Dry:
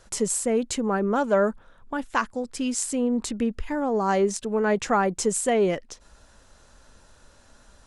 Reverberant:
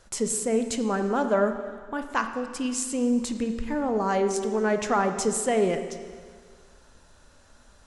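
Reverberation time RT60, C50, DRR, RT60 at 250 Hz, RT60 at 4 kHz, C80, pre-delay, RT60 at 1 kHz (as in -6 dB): 1.8 s, 8.0 dB, 7.0 dB, 1.8 s, 1.7 s, 9.5 dB, 26 ms, 1.8 s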